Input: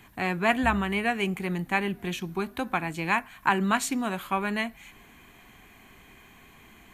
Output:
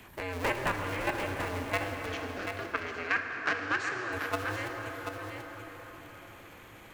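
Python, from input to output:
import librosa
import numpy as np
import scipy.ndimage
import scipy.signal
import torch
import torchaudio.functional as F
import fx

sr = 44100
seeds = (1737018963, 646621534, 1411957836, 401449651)

y = fx.cycle_switch(x, sr, every=2, mode='inverted')
y = fx.level_steps(y, sr, step_db=12)
y = fx.cabinet(y, sr, low_hz=210.0, low_slope=12, high_hz=5700.0, hz=(600.0, 910.0, 1600.0, 3600.0), db=(-6, -9, 7, -5), at=(2.06, 4.13))
y = y + 10.0 ** (-9.0 / 20.0) * np.pad(y, (int(735 * sr / 1000.0), 0))[:len(y)]
y = fx.rev_plate(y, sr, seeds[0], rt60_s=4.3, hf_ratio=0.55, predelay_ms=0, drr_db=4.0)
y = fx.band_squash(y, sr, depth_pct=40)
y = y * librosa.db_to_amplitude(-3.0)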